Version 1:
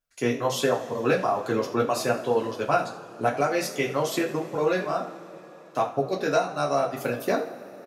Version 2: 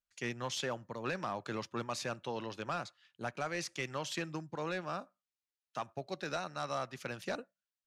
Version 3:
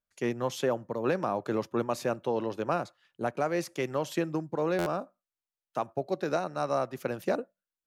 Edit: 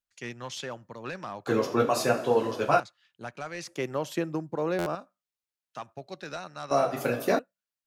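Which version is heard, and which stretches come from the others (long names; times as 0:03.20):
2
0:01.47–0:02.80: punch in from 1
0:03.67–0:04.95: punch in from 3
0:06.71–0:07.39: punch in from 1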